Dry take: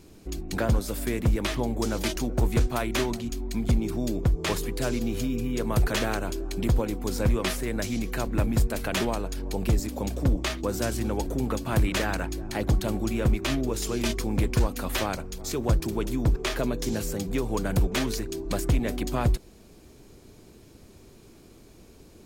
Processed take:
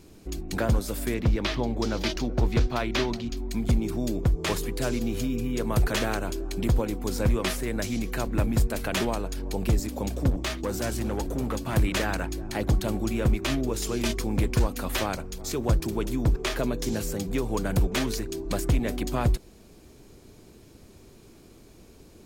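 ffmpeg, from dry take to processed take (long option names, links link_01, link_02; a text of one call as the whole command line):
ffmpeg -i in.wav -filter_complex "[0:a]asettb=1/sr,asplit=3[link_01][link_02][link_03];[link_01]atrim=end=1.144[link_04];[link_02]atrim=start=1.14:end=3.37,asetpts=PTS-STARTPTS,afade=type=in:duration=0.004:curve=qsin,afade=type=out:start_time=2.226:duration=0.004:curve=qsin,highshelf=frequency=6600:width_type=q:width=1.5:gain=-10.5[link_05];[link_03]atrim=start=3.366[link_06];[link_04][link_05]acrossfade=duration=0.004:curve1=hsin:curve2=qsin[link_07];[link_07][link_06]acrossfade=duration=0.004:curve1=qsin:curve2=hsin,asettb=1/sr,asplit=3[link_08][link_09][link_10];[link_08]atrim=end=10.304[link_11];[link_09]atrim=start=10.3:end=11.76,asetpts=PTS-STARTPTS,afade=type=in:duration=0.004:curve=qsin,afade=type=out:start_time=1.456:duration=0.004:curve=qsin,volume=23.5dB,asoftclip=hard,volume=-23.5dB[link_12];[link_10]atrim=start=11.756[link_13];[link_11][link_12]acrossfade=duration=0.004:curve1=hsin:curve2=qsin[link_14];[link_14][link_13]acrossfade=duration=0.004:curve1=qsin:curve2=hsin" out.wav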